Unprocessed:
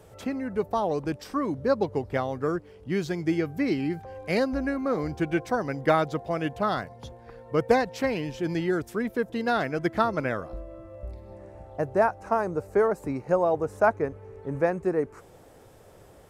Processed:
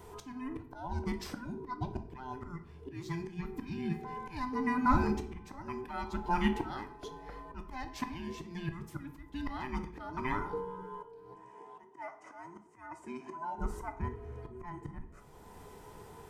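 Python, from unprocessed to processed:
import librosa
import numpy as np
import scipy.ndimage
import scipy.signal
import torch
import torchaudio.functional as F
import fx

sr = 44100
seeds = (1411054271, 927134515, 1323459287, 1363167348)

y = fx.band_invert(x, sr, width_hz=500)
y = fx.auto_swell(y, sr, attack_ms=617.0)
y = fx.cabinet(y, sr, low_hz=370.0, low_slope=12, high_hz=9200.0, hz=(460.0, 770.0, 1400.0, 4100.0), db=(-10, -8, -6, -8), at=(11.34, 13.58))
y = fx.room_shoebox(y, sr, seeds[0], volume_m3=94.0, walls='mixed', distance_m=0.37)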